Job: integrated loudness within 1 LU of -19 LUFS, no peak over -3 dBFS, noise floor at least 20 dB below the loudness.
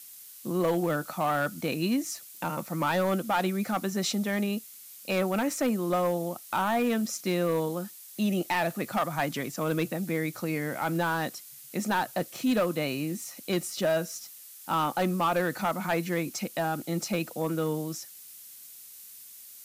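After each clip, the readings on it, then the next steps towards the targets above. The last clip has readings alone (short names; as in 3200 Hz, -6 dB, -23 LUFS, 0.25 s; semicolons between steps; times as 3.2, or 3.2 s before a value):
clipped 1.1%; flat tops at -20.0 dBFS; noise floor -48 dBFS; noise floor target -50 dBFS; loudness -29.5 LUFS; peak -20.0 dBFS; loudness target -19.0 LUFS
-> clip repair -20 dBFS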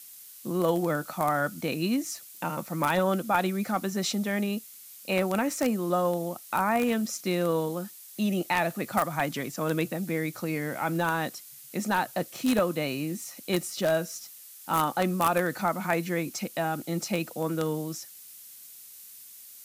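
clipped 0.0%; noise floor -48 dBFS; noise floor target -49 dBFS
-> denoiser 6 dB, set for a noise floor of -48 dBFS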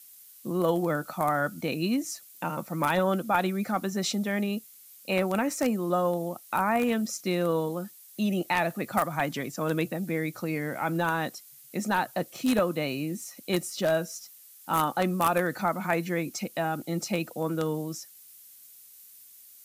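noise floor -52 dBFS; loudness -29.0 LUFS; peak -11.0 dBFS; loudness target -19.0 LUFS
-> gain +10 dB; limiter -3 dBFS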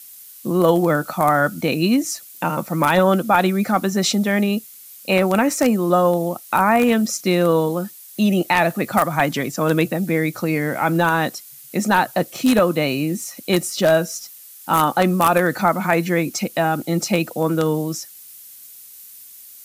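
loudness -19.0 LUFS; peak -3.0 dBFS; noise floor -42 dBFS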